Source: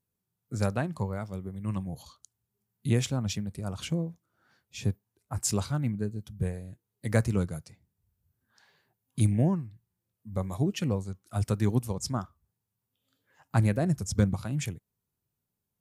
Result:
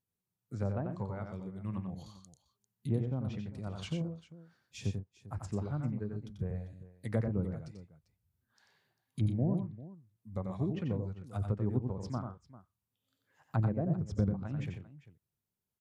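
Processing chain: treble ducked by the level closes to 760 Hz, closed at -23.5 dBFS; tapped delay 90/122/396 ms -5.5/-14/-17 dB; gain -6.5 dB

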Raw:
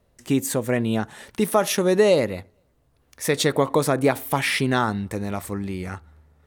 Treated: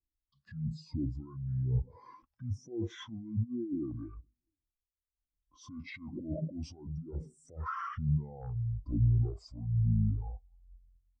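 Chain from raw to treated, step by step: speed mistake 78 rpm record played at 45 rpm; negative-ratio compressor -25 dBFS, ratio -0.5; sine folder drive 10 dB, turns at -7 dBFS; limiter -16 dBFS, peak gain reduction 9.5 dB; harmonic tremolo 1.1 Hz, depth 50%, crossover 640 Hz; spectral expander 2.5:1; gain -7.5 dB

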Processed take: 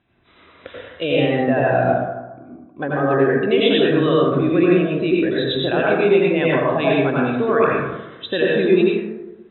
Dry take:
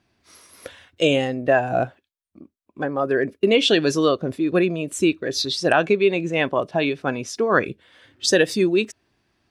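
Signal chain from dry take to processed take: limiter -13 dBFS, peak gain reduction 9 dB; brick-wall FIR low-pass 4000 Hz; plate-style reverb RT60 1.1 s, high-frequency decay 0.35×, pre-delay 75 ms, DRR -5 dB

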